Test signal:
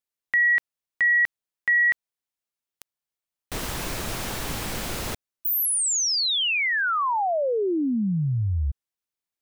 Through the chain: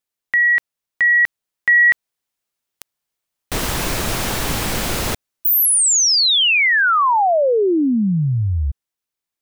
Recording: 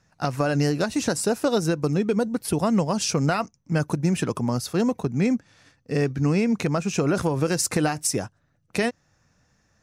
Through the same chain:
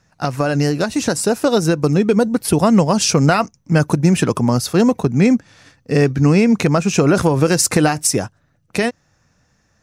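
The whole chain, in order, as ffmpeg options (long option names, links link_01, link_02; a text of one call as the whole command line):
ffmpeg -i in.wav -af "dynaudnorm=framelen=190:gausssize=17:maxgain=4dB,volume=5dB" out.wav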